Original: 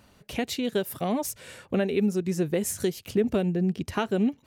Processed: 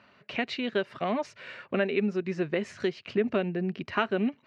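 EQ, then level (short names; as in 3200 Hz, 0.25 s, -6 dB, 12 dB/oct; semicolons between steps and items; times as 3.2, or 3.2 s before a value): speaker cabinet 140–3600 Hz, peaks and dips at 180 Hz -3 dB, 300 Hz -6 dB, 480 Hz -7 dB, 820 Hz -7 dB, 3400 Hz -8 dB; low shelf 280 Hz -10.5 dB; +5.5 dB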